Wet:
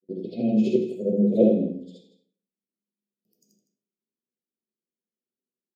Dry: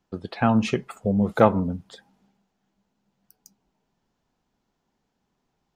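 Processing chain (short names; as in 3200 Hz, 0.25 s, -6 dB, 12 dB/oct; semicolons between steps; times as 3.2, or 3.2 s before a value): short-time reversal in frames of 0.166 s; HPF 470 Hz 12 dB/oct; gate with hold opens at -47 dBFS; inverse Chebyshev band-stop 890–1800 Hz, stop band 50 dB; tilt shelf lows +9 dB, about 730 Hz; echo 0.161 s -13 dB; reverb RT60 0.45 s, pre-delay 3 ms, DRR 0.5 dB; gain -3 dB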